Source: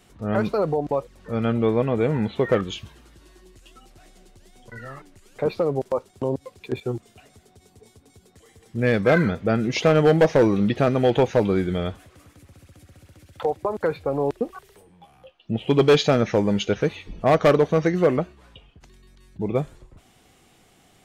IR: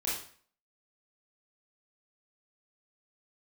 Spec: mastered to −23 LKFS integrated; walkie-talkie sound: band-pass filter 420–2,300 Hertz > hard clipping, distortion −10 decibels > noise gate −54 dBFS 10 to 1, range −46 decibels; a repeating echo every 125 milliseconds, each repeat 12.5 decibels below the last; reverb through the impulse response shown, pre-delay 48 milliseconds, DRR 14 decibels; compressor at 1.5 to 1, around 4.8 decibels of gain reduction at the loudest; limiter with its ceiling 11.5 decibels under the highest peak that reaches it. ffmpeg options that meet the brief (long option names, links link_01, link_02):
-filter_complex "[0:a]acompressor=threshold=-26dB:ratio=1.5,alimiter=limit=-24dB:level=0:latency=1,aecho=1:1:125|250|375:0.237|0.0569|0.0137,asplit=2[link_01][link_02];[1:a]atrim=start_sample=2205,adelay=48[link_03];[link_02][link_03]afir=irnorm=-1:irlink=0,volume=-19dB[link_04];[link_01][link_04]amix=inputs=2:normalize=0,highpass=420,lowpass=2300,asoftclip=type=hard:threshold=-32dB,agate=range=-46dB:threshold=-54dB:ratio=10,volume=16dB"